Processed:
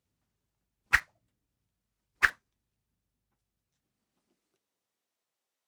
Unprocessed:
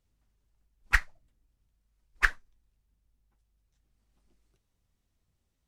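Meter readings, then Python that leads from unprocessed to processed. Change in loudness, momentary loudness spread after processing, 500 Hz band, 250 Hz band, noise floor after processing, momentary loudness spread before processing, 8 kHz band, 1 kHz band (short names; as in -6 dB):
+1.0 dB, 0 LU, +1.5 dB, n/a, under -85 dBFS, 0 LU, +1.5 dB, +1.0 dB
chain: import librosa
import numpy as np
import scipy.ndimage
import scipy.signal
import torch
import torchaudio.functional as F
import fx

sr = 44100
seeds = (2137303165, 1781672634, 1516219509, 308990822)

p1 = fx.filter_sweep_highpass(x, sr, from_hz=110.0, to_hz=570.0, start_s=3.46, end_s=5.31, q=0.89)
p2 = fx.quant_dither(p1, sr, seeds[0], bits=6, dither='none')
p3 = p1 + (p2 * librosa.db_to_amplitude(-7.5))
y = p3 * librosa.db_to_amplitude(-2.0)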